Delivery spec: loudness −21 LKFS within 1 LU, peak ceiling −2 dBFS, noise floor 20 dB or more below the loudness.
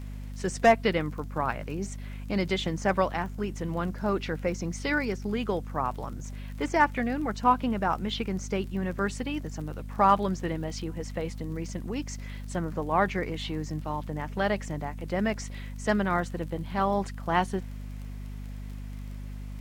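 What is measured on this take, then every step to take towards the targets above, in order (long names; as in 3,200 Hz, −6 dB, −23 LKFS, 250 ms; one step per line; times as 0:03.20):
crackle rate 30 per second; mains hum 50 Hz; hum harmonics up to 250 Hz; level of the hum −36 dBFS; integrated loudness −29.5 LKFS; sample peak −8.5 dBFS; target loudness −21.0 LKFS
→ click removal
mains-hum notches 50/100/150/200/250 Hz
level +8.5 dB
brickwall limiter −2 dBFS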